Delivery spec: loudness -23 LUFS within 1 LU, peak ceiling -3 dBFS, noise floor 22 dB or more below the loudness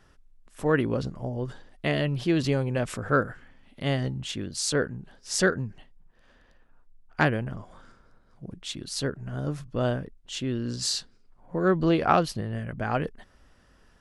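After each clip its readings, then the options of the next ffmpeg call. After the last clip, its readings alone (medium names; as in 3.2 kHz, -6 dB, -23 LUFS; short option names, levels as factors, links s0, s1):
loudness -28.0 LUFS; peak level -6.0 dBFS; loudness target -23.0 LUFS
-> -af "volume=1.78,alimiter=limit=0.708:level=0:latency=1"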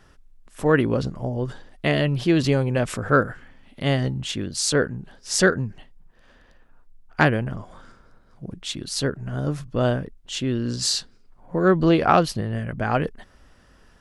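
loudness -23.0 LUFS; peak level -3.0 dBFS; noise floor -55 dBFS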